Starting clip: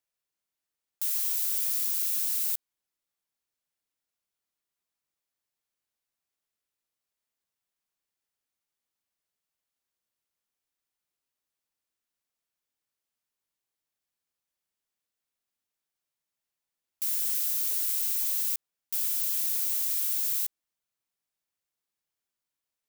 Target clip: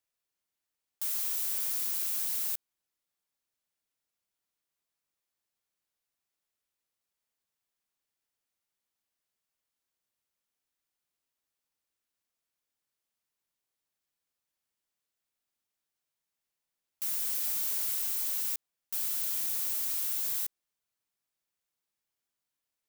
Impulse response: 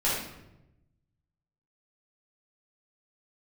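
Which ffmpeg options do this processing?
-filter_complex "[0:a]asettb=1/sr,asplit=3[link_01][link_02][link_03];[link_01]atrim=end=17.434[link_04];[link_02]atrim=start=17.43:end=17.94,asetpts=PTS-STARTPTS,afade=type=in:duration=0.004:curve=qsin,afade=type=out:start_time=0.506:duration=0.004:curve=qsin,aecho=1:1:7.4:0.54,atrim=end_sample=22491[link_05];[link_03]atrim=start=17.936[link_06];[link_04][link_05]acrossfade=duration=0.004:curve1=hsin:curve2=qsin[link_07];[link_07][link_06]acrossfade=duration=0.004:curve1=qsin:curve2=hsin,acrossover=split=390[link_08][link_09];[link_09]asoftclip=type=tanh:threshold=-27.5dB[link_10];[link_08][link_10]amix=inputs=2:normalize=0"

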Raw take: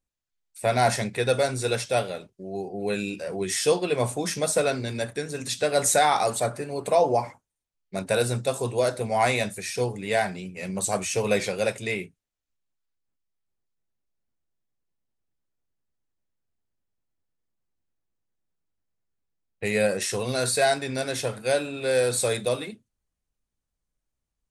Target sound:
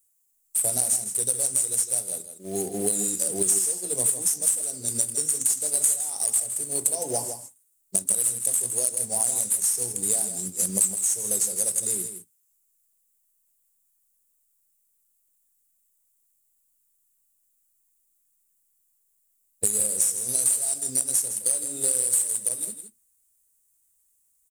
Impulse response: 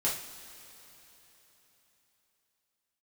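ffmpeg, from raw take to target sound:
-filter_complex "[0:a]agate=range=-10dB:threshold=-36dB:ratio=16:detection=peak,firequalizer=gain_entry='entry(120,0);entry(280,3);entry(1900,-18);entry(5200,-3);entry(7900,13)':delay=0.05:min_phase=1,aexciter=amount=12:drive=2.5:freq=4100,acrusher=bits=4:mode=log:mix=0:aa=0.000001,acompressor=threshold=-22dB:ratio=12,asplit=2[link_01][link_02];[link_02]aecho=0:1:161:0.335[link_03];[link_01][link_03]amix=inputs=2:normalize=0,volume=1dB"

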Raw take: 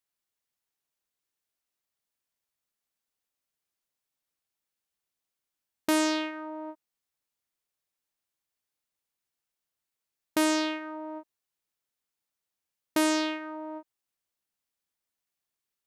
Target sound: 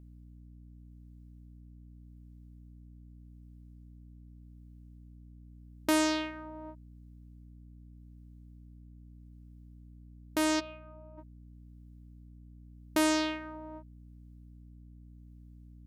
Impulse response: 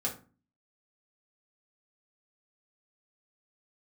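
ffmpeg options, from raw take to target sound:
-filter_complex "[0:a]asplit=3[link_01][link_02][link_03];[link_01]afade=type=out:start_time=10.59:duration=0.02[link_04];[link_02]asplit=3[link_05][link_06][link_07];[link_05]bandpass=frequency=730:width_type=q:width=8,volume=0dB[link_08];[link_06]bandpass=frequency=1090:width_type=q:width=8,volume=-6dB[link_09];[link_07]bandpass=frequency=2440:width_type=q:width=8,volume=-9dB[link_10];[link_08][link_09][link_10]amix=inputs=3:normalize=0,afade=type=in:start_time=10.59:duration=0.02,afade=type=out:start_time=11.17:duration=0.02[link_11];[link_03]afade=type=in:start_time=11.17:duration=0.02[link_12];[link_04][link_11][link_12]amix=inputs=3:normalize=0,tremolo=f=0.84:d=0.47,aeval=exprs='val(0)+0.00355*(sin(2*PI*60*n/s)+sin(2*PI*2*60*n/s)/2+sin(2*PI*3*60*n/s)/3+sin(2*PI*4*60*n/s)/4+sin(2*PI*5*60*n/s)/5)':channel_layout=same,volume=-1.5dB"

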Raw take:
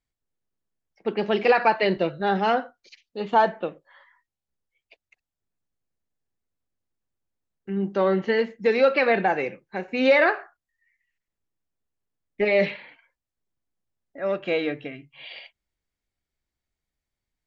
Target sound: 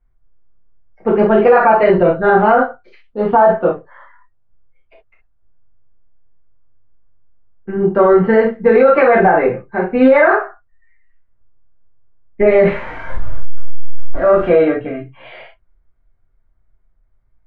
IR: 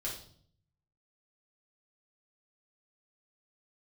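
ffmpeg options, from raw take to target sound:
-filter_complex "[0:a]asettb=1/sr,asplit=3[link_01][link_02][link_03];[link_01]atrim=end=12.624[link_04];[link_02]atrim=start=12.62:end=14.49,asetpts=PTS-STARTPTS,afade=type=in:duration=0.004:curve=qsin,afade=type=out:start_time=1.866:duration=0.004:curve=qsin,aeval=exprs='val(0)+0.5*0.0168*sgn(val(0))':channel_layout=same[link_05];[link_03]atrim=start=14.486[link_06];[link_04][link_05]acrossfade=duration=0.004:curve1=hsin:curve2=qsin[link_07];[link_07][link_06]acrossfade=duration=0.004:curve1=qsin:curve2=hsin,lowpass=frequency=1200:width_type=q:width=1.6,lowshelf=frequency=88:gain=11.5[link_08];[1:a]atrim=start_sample=2205,atrim=end_sample=3528[link_09];[link_08][link_09]afir=irnorm=-1:irlink=0,alimiter=level_in=12.5dB:limit=-1dB:release=50:level=0:latency=1,volume=-1dB"

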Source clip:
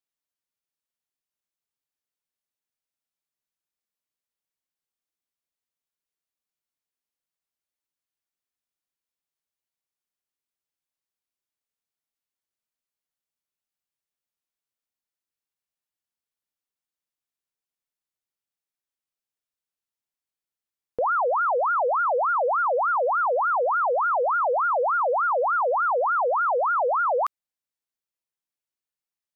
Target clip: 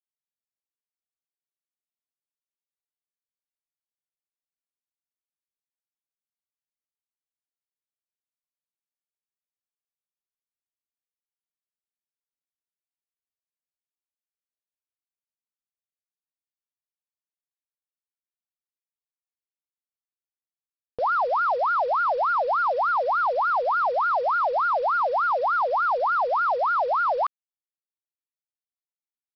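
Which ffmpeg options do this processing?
ffmpeg -i in.wav -af "firequalizer=gain_entry='entry(130,0);entry(280,-7);entry(480,-5);entry(670,1);entry(2100,-1)':delay=0.05:min_phase=1,acontrast=85,aresample=11025,acrusher=bits=5:mix=0:aa=0.5,aresample=44100,volume=-7dB" out.wav

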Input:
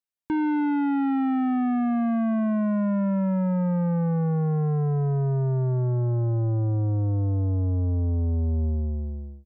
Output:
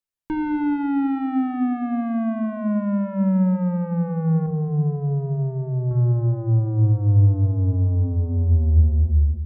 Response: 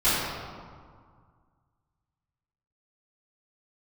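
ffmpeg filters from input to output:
-filter_complex "[0:a]asettb=1/sr,asplit=3[link_01][link_02][link_03];[link_01]atrim=end=4.464[link_04];[link_02]atrim=start=4.46:end=5.91,asetpts=PTS-STARTPTS,afade=type=in:duration=0.004:curve=qsin,afade=type=out:start_time=1.446:duration=0.004:curve=qsin,asplit=2[link_05][link_06];[link_06]highpass=frequency=720:poles=1,volume=11dB,asoftclip=type=tanh:threshold=-22dB[link_07];[link_05][link_07]amix=inputs=2:normalize=0,lowpass=frequency=1000:poles=1,volume=-6dB[link_08];[link_03]atrim=start=5.906[link_09];[link_04][link_08]acrossfade=duration=0.004:curve1=hsin:curve2=qsin[link_10];[link_10][link_09]acrossfade=duration=0.004:curve1=qsin:curve2=hsin,asplit=2[link_11][link_12];[link_12]aemphasis=mode=reproduction:type=bsi[link_13];[1:a]atrim=start_sample=2205,lowshelf=frequency=360:gain=10.5[link_14];[link_13][link_14]afir=irnorm=-1:irlink=0,volume=-34dB[link_15];[link_11][link_15]amix=inputs=2:normalize=0"

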